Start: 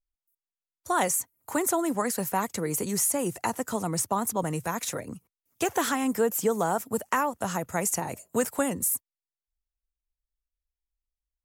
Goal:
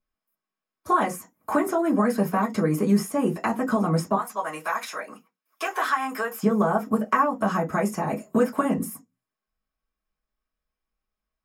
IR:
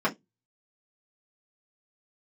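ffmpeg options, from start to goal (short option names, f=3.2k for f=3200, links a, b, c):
-filter_complex "[0:a]asettb=1/sr,asplit=3[a][b][c];[a]atrim=end=4.164[d];[b]atrim=start=4.16:end=6.43,asetpts=PTS-STARTPTS,afade=t=in:d=0.004:c=qsin,afade=t=out:st=2.266:d=0.004:c=qsin,highpass=950[e];[c]atrim=start=6.426[f];[d][e]acrossfade=d=0.004:c1=hsin:c2=qsin[g];[g][f]acrossfade=d=0.004:c1=qsin:c2=hsin,acompressor=threshold=-37dB:ratio=2.5[h];[1:a]atrim=start_sample=2205[i];[h][i]afir=irnorm=-1:irlink=0"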